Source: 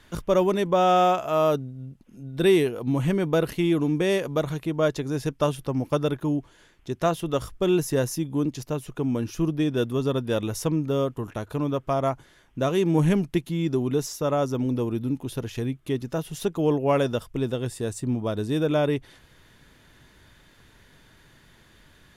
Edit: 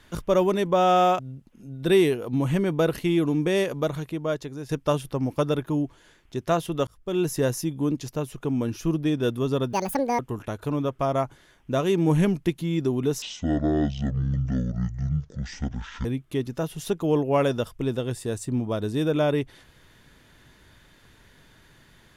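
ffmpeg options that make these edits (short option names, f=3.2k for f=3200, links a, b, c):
-filter_complex "[0:a]asplit=8[a][b][c][d][e][f][g][h];[a]atrim=end=1.192[i];[b]atrim=start=1.728:end=5.23,asetpts=PTS-STARTPTS,afade=t=out:st=2.542:d=0.96:silence=0.334965[j];[c]atrim=start=5.23:end=7.41,asetpts=PTS-STARTPTS,afade=t=in:d=0.004:c=hsin:silence=0.334965,afade=t=out:st=2.176:d=0.004:c=hsin[k];[d]atrim=start=7.41:end=10.274,asetpts=PTS-STARTPTS,afade=t=in:d=0.45[l];[e]atrim=start=10.27:end=11.07,asetpts=PTS-STARTPTS,asetrate=76734,aresample=44100[m];[f]atrim=start=11.066:end=14.104[n];[g]atrim=start=14.1:end=15.6,asetpts=PTS-STARTPTS,asetrate=23373,aresample=44100,atrim=end_sample=124811,asetpts=PTS-STARTPTS[o];[h]atrim=start=15.596[p];[j][k][l]concat=n=3:v=0:a=1[q];[i][q]acrossfade=d=0.004:c1=hsin:c2=hsin[r];[r][m]acrossfade=d=0.004:c1=hsin:c2=hsin[s];[s][n]acrossfade=d=0.004:c1=hsin:c2=hsin[t];[t][o]acrossfade=d=0.004:c1=hsin:c2=hsin[u];[u][p]acrossfade=d=0.004:c1=hsin:c2=hsin"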